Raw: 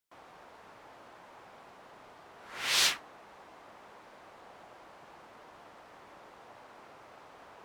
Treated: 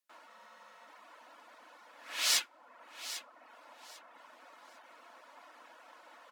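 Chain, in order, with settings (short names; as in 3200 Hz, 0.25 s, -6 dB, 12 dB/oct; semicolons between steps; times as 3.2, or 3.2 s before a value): steep high-pass 210 Hz 36 dB/oct; notch comb 330 Hz; wide varispeed 1.21×; bell 400 Hz -9 dB 0.36 oct; feedback echo 0.797 s, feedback 22%, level -13 dB; reverb removal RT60 0.62 s; spectral freeze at 0.31, 0.57 s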